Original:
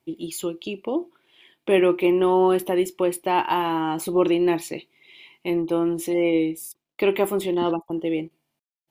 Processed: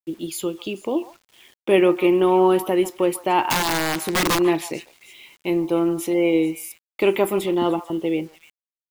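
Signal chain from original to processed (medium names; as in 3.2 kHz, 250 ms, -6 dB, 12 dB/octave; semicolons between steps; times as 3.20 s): 3.50–4.39 s: integer overflow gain 17 dB; repeats whose band climbs or falls 147 ms, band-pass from 1 kHz, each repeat 1.4 oct, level -10.5 dB; bit crusher 9-bit; trim +2 dB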